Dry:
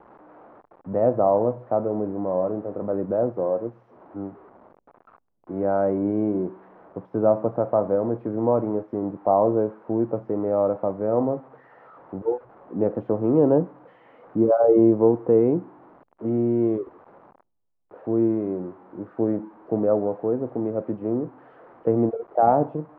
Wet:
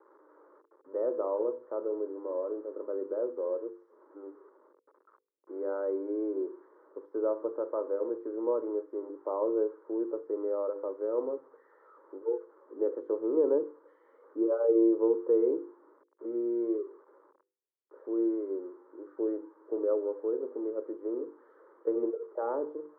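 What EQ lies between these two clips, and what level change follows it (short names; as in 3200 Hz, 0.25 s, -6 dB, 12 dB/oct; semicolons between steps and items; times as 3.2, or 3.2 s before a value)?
ladder high-pass 300 Hz, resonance 40%; notches 50/100/150/200/250/300/350/400/450/500 Hz; fixed phaser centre 720 Hz, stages 6; -1.0 dB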